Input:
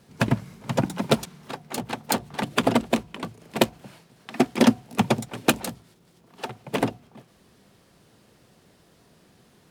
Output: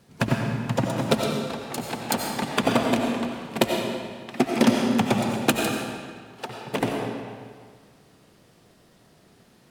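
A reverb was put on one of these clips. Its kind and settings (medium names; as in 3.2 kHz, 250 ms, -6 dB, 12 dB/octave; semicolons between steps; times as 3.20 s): algorithmic reverb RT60 1.8 s, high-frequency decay 0.85×, pre-delay 50 ms, DRR 0.5 dB; trim -1.5 dB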